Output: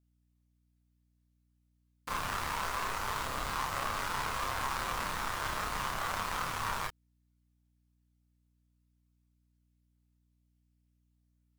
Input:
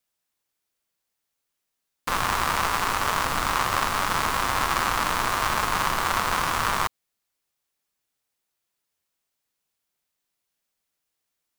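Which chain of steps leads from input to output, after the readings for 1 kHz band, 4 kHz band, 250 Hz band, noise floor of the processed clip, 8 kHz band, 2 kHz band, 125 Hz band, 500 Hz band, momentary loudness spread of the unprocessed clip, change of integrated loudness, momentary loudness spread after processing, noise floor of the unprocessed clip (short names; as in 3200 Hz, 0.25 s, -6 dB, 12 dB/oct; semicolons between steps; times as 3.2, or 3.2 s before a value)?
-11.0 dB, -11.0 dB, -11.0 dB, -74 dBFS, -11.0 dB, -11.0 dB, -9.0 dB, -10.5 dB, 2 LU, -11.0 dB, 2 LU, -81 dBFS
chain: chorus voices 4, 0.31 Hz, delay 30 ms, depth 1.2 ms; hum 60 Hz, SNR 34 dB; gain -8 dB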